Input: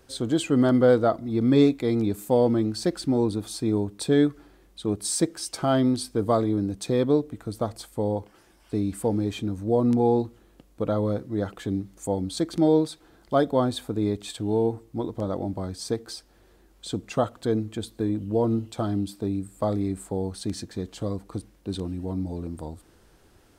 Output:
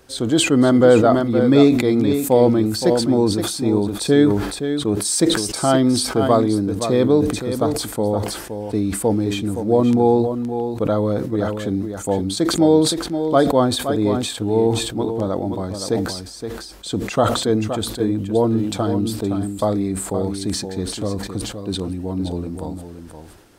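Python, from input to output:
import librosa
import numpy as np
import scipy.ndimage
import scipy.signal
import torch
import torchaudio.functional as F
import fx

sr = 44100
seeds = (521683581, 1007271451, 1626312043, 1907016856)

y = fx.low_shelf(x, sr, hz=170.0, db=-4.0)
y = y + 10.0 ** (-8.5 / 20.0) * np.pad(y, (int(519 * sr / 1000.0), 0))[:len(y)]
y = fx.sustainer(y, sr, db_per_s=57.0)
y = F.gain(torch.from_numpy(y), 6.5).numpy()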